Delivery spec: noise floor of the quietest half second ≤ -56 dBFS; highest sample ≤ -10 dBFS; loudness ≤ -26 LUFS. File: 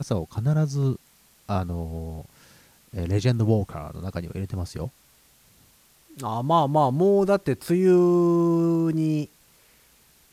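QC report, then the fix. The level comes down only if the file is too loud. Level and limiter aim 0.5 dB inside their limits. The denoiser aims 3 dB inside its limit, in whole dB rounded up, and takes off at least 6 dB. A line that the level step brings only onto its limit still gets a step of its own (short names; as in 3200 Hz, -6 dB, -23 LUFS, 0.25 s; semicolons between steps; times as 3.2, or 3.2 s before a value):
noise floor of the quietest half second -58 dBFS: OK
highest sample -8.5 dBFS: fail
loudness -23.5 LUFS: fail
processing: gain -3 dB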